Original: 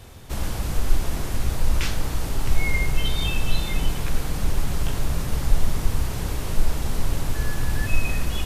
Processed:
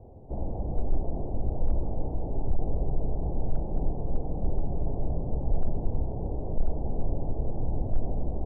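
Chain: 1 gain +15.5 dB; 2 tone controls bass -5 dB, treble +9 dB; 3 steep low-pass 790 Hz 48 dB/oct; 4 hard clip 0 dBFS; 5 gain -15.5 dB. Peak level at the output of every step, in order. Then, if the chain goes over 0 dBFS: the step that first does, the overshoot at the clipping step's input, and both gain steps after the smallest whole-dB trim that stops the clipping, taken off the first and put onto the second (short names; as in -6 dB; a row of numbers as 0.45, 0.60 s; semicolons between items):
+11.5, +7.5, +6.5, 0.0, -15.5 dBFS; step 1, 6.5 dB; step 1 +8.5 dB, step 5 -8.5 dB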